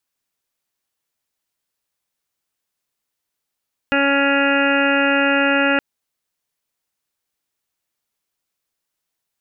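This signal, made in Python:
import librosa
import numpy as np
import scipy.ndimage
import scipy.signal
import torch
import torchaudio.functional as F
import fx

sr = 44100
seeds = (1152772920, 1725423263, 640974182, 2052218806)

y = fx.additive_steady(sr, length_s=1.87, hz=279.0, level_db=-19.5, upper_db=(-1, -6.0, -18, -1.0, -2.5, -6.5, -17.5, -5.0, -6.0))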